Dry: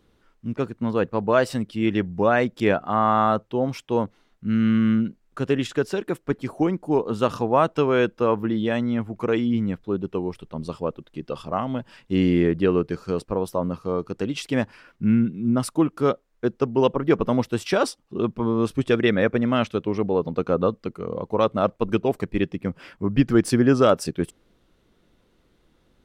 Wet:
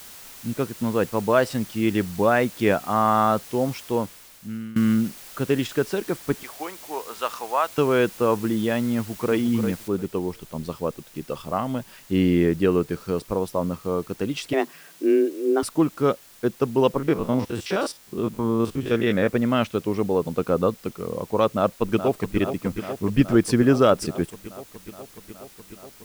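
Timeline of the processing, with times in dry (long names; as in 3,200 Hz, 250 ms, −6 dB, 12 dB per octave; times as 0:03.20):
0:03.79–0:04.76: fade out, to −21 dB
0:06.43–0:07.78: high-pass filter 830 Hz
0:08.96–0:09.36: delay throw 350 ms, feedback 20%, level −7.5 dB
0:09.88: noise floor change −43 dB −50 dB
0:14.53–0:15.63: frequency shifter +140 Hz
0:16.98–0:19.29: spectrum averaged block by block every 50 ms
0:21.55–0:22.37: delay throw 420 ms, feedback 80%, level −9.5 dB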